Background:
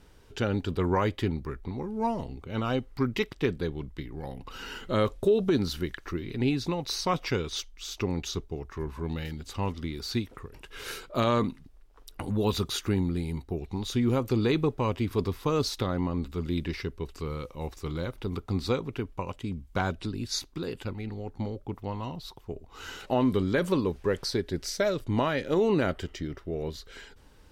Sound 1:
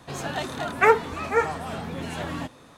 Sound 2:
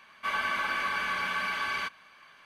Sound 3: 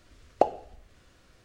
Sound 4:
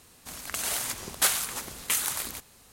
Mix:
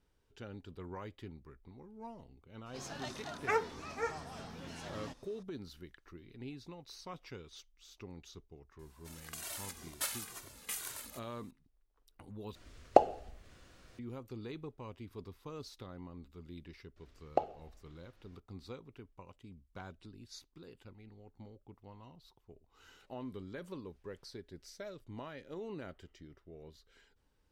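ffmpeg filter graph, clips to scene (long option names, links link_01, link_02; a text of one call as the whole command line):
ffmpeg -i bed.wav -i cue0.wav -i cue1.wav -i cue2.wav -i cue3.wav -filter_complex "[3:a]asplit=2[link_01][link_02];[0:a]volume=-19.5dB[link_03];[1:a]equalizer=frequency=5400:width=2:gain=12[link_04];[4:a]asplit=2[link_05][link_06];[link_06]adelay=2,afreqshift=-2.1[link_07];[link_05][link_07]amix=inputs=2:normalize=1[link_08];[link_02]lowpass=5400[link_09];[link_03]asplit=2[link_10][link_11];[link_10]atrim=end=12.554[link_12];[link_01]atrim=end=1.44[link_13];[link_11]atrim=start=13.986[link_14];[link_04]atrim=end=2.77,asetpts=PTS-STARTPTS,volume=-15dB,afade=type=in:duration=0.004:curve=hsin,afade=type=out:start_time=2.766:duration=0.004:curve=hsin,adelay=2660[link_15];[link_08]atrim=end=2.72,asetpts=PTS-STARTPTS,volume=-10.5dB,afade=type=in:duration=0.004:curve=hsin,afade=type=out:start_time=2.716:duration=0.004:curve=hsin,adelay=8790[link_16];[link_09]atrim=end=1.44,asetpts=PTS-STARTPTS,volume=-9dB,afade=type=in:duration=0.004:curve=hsin,afade=type=out:start_time=1.436:duration=0.004:curve=hsin,adelay=16960[link_17];[link_12][link_13]acrossfade=duration=0.004:curve1=hsin:curve2=hsin[link_18];[link_18][link_14]acrossfade=duration=0.004:curve1=hsin:curve2=hsin[link_19];[link_19][link_15][link_16][link_17]amix=inputs=4:normalize=0" out.wav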